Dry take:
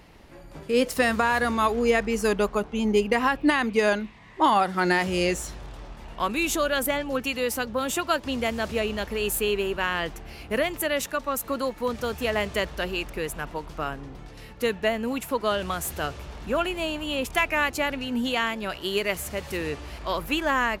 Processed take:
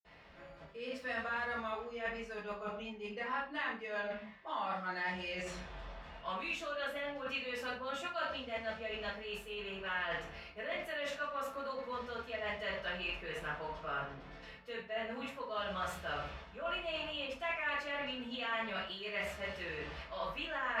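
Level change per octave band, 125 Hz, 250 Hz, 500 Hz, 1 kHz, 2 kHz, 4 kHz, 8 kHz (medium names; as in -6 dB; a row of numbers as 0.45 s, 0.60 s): -15.5 dB, -20.0 dB, -15.0 dB, -13.0 dB, -11.0 dB, -11.5 dB, -24.0 dB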